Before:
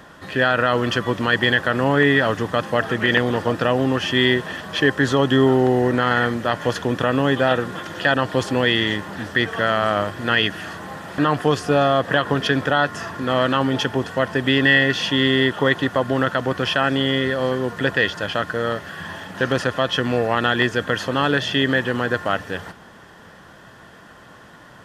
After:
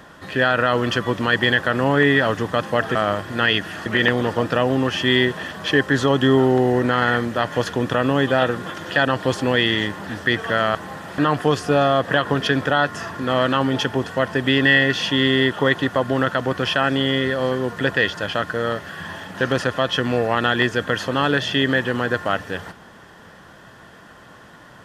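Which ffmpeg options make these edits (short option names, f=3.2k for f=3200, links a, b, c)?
-filter_complex "[0:a]asplit=4[a][b][c][d];[a]atrim=end=2.952[e];[b]atrim=start=9.838:end=10.752[f];[c]atrim=start=2.948:end=9.842[g];[d]atrim=start=10.748[h];[e][f]acrossfade=d=0.004:c1=hsin:c2=hsin[i];[i][g]acrossfade=d=0.004:c1=hsin:c2=hsin[j];[j][h]acrossfade=d=0.004:c1=hsin:c2=hsin"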